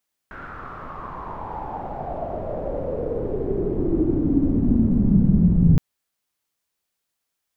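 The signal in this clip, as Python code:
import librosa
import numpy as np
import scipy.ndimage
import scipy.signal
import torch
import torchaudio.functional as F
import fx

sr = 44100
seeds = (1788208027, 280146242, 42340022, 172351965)

y = fx.riser_noise(sr, seeds[0], length_s=5.47, colour='pink', kind='lowpass', start_hz=1500.0, end_hz=160.0, q=6.1, swell_db=24.5, law='exponential')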